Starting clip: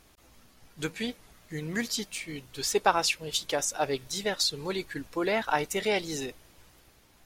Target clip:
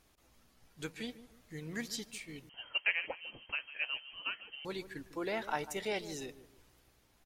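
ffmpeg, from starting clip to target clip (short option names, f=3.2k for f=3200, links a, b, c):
-filter_complex "[0:a]asplit=2[a][b];[b]adelay=150,lowpass=f=930:p=1,volume=-13dB,asplit=2[c][d];[d]adelay=150,lowpass=f=930:p=1,volume=0.36,asplit=2[e][f];[f]adelay=150,lowpass=f=930:p=1,volume=0.36,asplit=2[g][h];[h]adelay=150,lowpass=f=930:p=1,volume=0.36[i];[a][c][e][g][i]amix=inputs=5:normalize=0,asettb=1/sr,asplit=3[j][k][l];[j]atrim=end=2.494[m];[k]atrim=start=2.49:end=4.65,asetpts=PTS-STARTPTS,afade=t=in:d=0.004:c=qsin,afade=t=out:st=2.156:d=0.004:c=qsin,lowpass=f=2.7k:t=q:w=0.5098,lowpass=f=2.7k:t=q:w=0.6013,lowpass=f=2.7k:t=q:w=0.9,lowpass=f=2.7k:t=q:w=2.563,afreqshift=-3200[n];[l]atrim=start=4.646[o];[m][n]acrossfade=d=0.004:c1=hsin:c2=qsin[p];[p][o]acrossfade=d=0.004:c1=qsin:c2=hsin,volume=-9dB"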